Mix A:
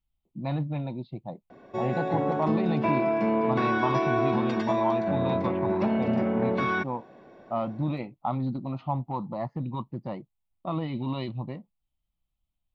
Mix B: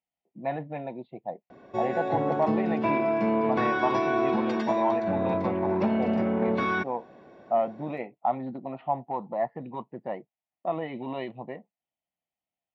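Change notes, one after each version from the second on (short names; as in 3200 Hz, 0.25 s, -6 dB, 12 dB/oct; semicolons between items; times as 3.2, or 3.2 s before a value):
speech: add speaker cabinet 280–2900 Hz, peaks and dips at 310 Hz -3 dB, 440 Hz +7 dB, 700 Hz +8 dB, 1200 Hz -7 dB, 1800 Hz +9 dB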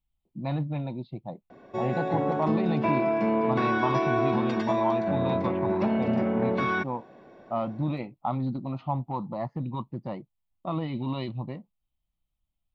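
speech: remove speaker cabinet 280–2900 Hz, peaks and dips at 310 Hz -3 dB, 440 Hz +7 dB, 700 Hz +8 dB, 1200 Hz -7 dB, 1800 Hz +9 dB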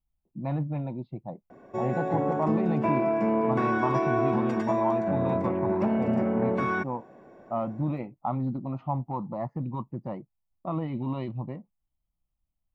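background: remove air absorption 92 m; master: add bell 4000 Hz -14 dB 1.2 oct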